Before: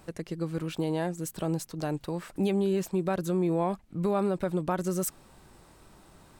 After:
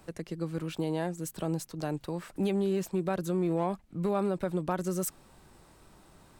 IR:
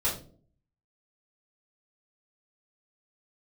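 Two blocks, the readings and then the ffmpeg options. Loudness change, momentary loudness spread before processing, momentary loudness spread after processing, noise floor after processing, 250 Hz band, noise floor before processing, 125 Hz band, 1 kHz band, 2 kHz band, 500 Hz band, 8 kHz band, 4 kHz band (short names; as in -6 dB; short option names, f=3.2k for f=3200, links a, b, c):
-2.0 dB, 6 LU, 6 LU, -59 dBFS, -2.0 dB, -57 dBFS, -2.0 dB, -2.0 dB, -2.0 dB, -2.0 dB, -2.0 dB, -2.0 dB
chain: -filter_complex "[0:a]acrossover=split=150[a][b];[b]aeval=exprs='clip(val(0),-1,0.0708)':c=same[c];[a][c]amix=inputs=2:normalize=0,volume=-2dB"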